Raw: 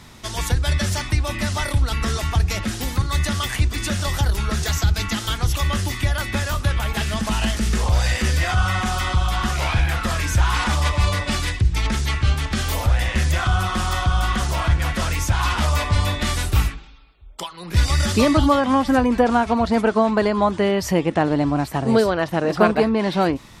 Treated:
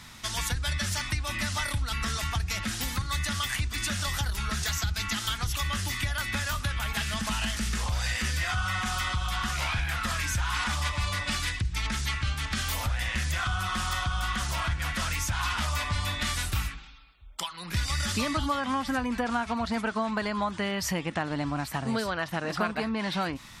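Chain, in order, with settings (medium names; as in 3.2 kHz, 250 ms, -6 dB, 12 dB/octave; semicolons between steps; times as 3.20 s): FFT filter 240 Hz 0 dB, 390 Hz -7 dB, 1.4 kHz +6 dB; compression 2.5:1, threshold -22 dBFS, peak gain reduction 9 dB; trim -6 dB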